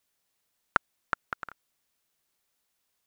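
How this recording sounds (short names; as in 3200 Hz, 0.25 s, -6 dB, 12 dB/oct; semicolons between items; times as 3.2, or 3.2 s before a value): noise floor -78 dBFS; spectral tilt -1.5 dB/oct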